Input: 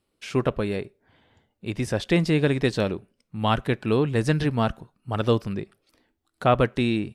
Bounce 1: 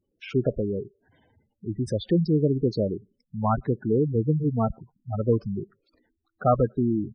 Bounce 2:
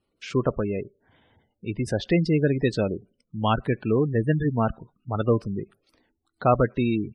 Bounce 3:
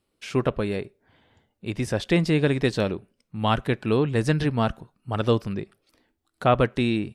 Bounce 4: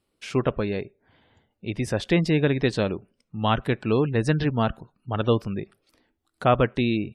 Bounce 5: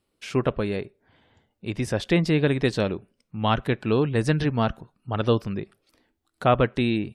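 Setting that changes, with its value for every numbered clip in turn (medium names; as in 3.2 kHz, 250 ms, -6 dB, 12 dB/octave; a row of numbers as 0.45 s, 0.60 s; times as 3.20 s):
spectral gate, under each frame's peak: -10 dB, -20 dB, -60 dB, -35 dB, -45 dB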